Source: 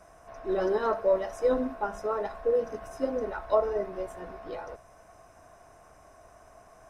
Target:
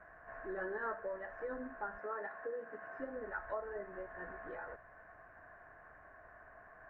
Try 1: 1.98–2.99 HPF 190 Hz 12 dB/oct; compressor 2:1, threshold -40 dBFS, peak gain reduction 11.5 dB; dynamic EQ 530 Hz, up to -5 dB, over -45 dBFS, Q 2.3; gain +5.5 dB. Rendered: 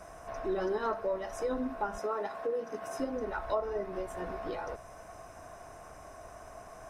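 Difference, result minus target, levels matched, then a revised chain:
2000 Hz band -8.5 dB
1.98–2.99 HPF 190 Hz 12 dB/oct; compressor 2:1, threshold -40 dBFS, peak gain reduction 11.5 dB; ladder low-pass 1800 Hz, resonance 80%; dynamic EQ 530 Hz, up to -5 dB, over -45 dBFS, Q 2.3; gain +5.5 dB

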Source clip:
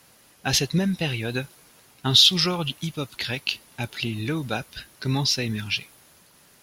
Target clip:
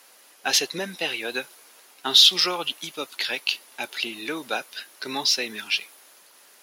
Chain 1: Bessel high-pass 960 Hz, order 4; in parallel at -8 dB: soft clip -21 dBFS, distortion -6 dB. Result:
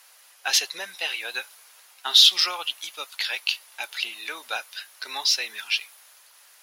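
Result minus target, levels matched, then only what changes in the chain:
500 Hz band -10.0 dB
change: Bessel high-pass 460 Hz, order 4

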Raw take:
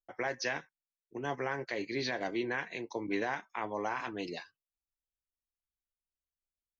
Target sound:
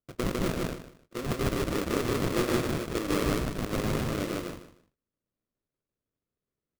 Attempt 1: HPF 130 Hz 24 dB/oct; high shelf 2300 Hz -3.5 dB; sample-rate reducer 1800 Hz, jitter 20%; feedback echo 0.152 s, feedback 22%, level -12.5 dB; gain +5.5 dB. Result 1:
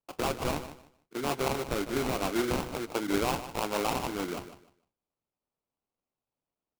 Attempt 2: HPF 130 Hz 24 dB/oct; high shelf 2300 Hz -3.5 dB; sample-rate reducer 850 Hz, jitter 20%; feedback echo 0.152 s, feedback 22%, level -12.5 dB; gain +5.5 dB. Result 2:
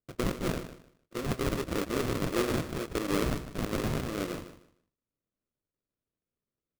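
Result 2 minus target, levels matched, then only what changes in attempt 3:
echo-to-direct -11.5 dB
change: feedback echo 0.152 s, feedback 22%, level -1 dB

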